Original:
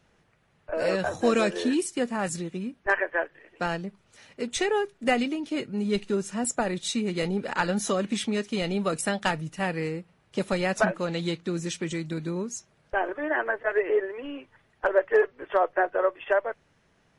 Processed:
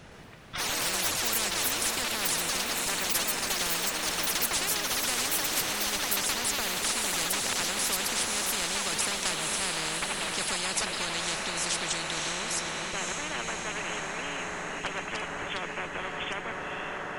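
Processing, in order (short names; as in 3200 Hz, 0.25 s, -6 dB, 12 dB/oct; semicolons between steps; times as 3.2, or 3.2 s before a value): echoes that change speed 0.115 s, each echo +7 st, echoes 3, each echo -6 dB; diffused feedback echo 0.551 s, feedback 66%, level -12 dB; spectral compressor 10:1; gain -4.5 dB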